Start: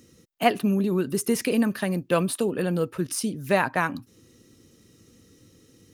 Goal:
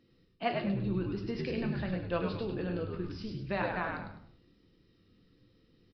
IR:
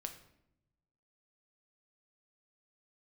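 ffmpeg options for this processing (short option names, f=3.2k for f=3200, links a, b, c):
-filter_complex "[0:a]bandreject=f=83.5:t=h:w=4,bandreject=f=167:t=h:w=4,bandreject=f=250.5:t=h:w=4,bandreject=f=334:t=h:w=4,bandreject=f=417.5:t=h:w=4,bandreject=f=501:t=h:w=4,bandreject=f=584.5:t=h:w=4,asplit=5[a][b][c][d][e];[b]adelay=102,afreqshift=-78,volume=-4dB[f];[c]adelay=204,afreqshift=-156,volume=-13.9dB[g];[d]adelay=306,afreqshift=-234,volume=-23.8dB[h];[e]adelay=408,afreqshift=-312,volume=-33.7dB[i];[a][f][g][h][i]amix=inputs=5:normalize=0[j];[1:a]atrim=start_sample=2205,afade=t=out:st=0.36:d=0.01,atrim=end_sample=16317,asetrate=48510,aresample=44100[k];[j][k]afir=irnorm=-1:irlink=0,aresample=11025,aresample=44100,volume=-7dB" -ar 16000 -c:a libmp3lame -b:a 40k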